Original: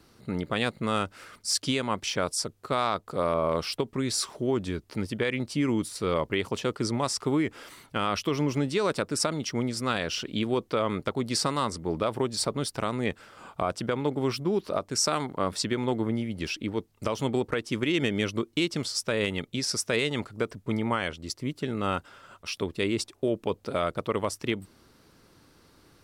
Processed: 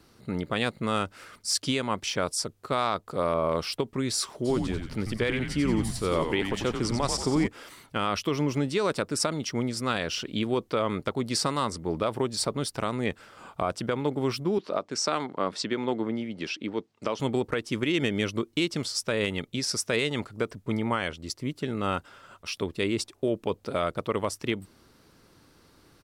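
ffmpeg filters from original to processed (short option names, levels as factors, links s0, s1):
-filter_complex "[0:a]asplit=3[s0][s1][s2];[s0]afade=t=out:st=4.44:d=0.02[s3];[s1]asplit=7[s4][s5][s6][s7][s8][s9][s10];[s5]adelay=90,afreqshift=-100,volume=0.501[s11];[s6]adelay=180,afreqshift=-200,volume=0.257[s12];[s7]adelay=270,afreqshift=-300,volume=0.13[s13];[s8]adelay=360,afreqshift=-400,volume=0.0668[s14];[s9]adelay=450,afreqshift=-500,volume=0.0339[s15];[s10]adelay=540,afreqshift=-600,volume=0.0174[s16];[s4][s11][s12][s13][s14][s15][s16]amix=inputs=7:normalize=0,afade=t=in:st=4.44:d=0.02,afade=t=out:st=7.46:d=0.02[s17];[s2]afade=t=in:st=7.46:d=0.02[s18];[s3][s17][s18]amix=inputs=3:normalize=0,asettb=1/sr,asplit=3[s19][s20][s21];[s19]atrim=end=14.584[s22];[s20]atrim=start=14.58:end=17.2,asetpts=PTS-STARTPTS,afade=t=in:d=0.004:c=qsin,afade=t=out:st=2.616:d=0.004:c=qsin,highpass=190,lowpass=5600[s23];[s21]atrim=start=17.196[s24];[s22][s23]acrossfade=d=0.004:c1=hsin:c2=qsin[s25];[s25][s24]acrossfade=d=0.004:c1=qsin:c2=hsin"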